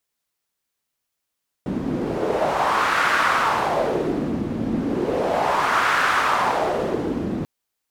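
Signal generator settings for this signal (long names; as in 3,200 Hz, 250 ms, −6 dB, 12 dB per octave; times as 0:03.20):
wind from filtered noise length 5.79 s, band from 230 Hz, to 1,400 Hz, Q 2.6, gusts 2, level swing 5.5 dB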